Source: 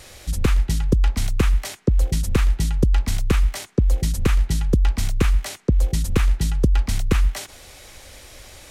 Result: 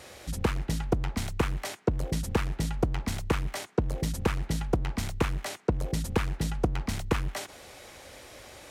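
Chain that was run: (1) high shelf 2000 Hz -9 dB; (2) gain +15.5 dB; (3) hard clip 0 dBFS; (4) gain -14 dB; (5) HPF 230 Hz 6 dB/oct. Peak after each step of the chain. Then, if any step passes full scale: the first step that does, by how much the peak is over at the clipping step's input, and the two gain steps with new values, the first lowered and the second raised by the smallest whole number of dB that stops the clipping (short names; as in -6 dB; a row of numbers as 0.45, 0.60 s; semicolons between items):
-6.0, +9.5, 0.0, -14.0, -11.5 dBFS; step 2, 9.5 dB; step 2 +5.5 dB, step 4 -4 dB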